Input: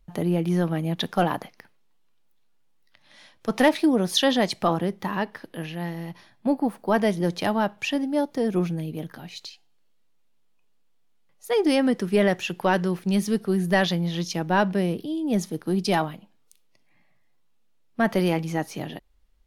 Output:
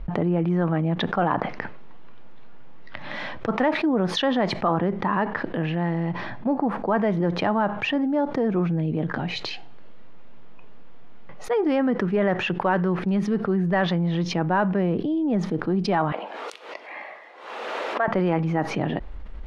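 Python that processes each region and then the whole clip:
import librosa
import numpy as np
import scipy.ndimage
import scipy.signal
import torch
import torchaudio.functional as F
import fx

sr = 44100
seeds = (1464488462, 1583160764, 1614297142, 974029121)

y = fx.chain(x, sr, fx.highpass(hz=440.0, slope=24),
    fx.pre_swell(db_per_s=87.0), at=(16.12, 18.08))
y = scipy.signal.sosfilt(scipy.signal.butter(2, 1800.0, 'lowpass', fs=sr, output='sos'), y)
y = fx.dynamic_eq(y, sr, hz=1200.0, q=1.1, threshold_db=-38.0, ratio=4.0, max_db=5)
y = fx.env_flatten(y, sr, amount_pct=70)
y = y * 10.0 ** (-5.5 / 20.0)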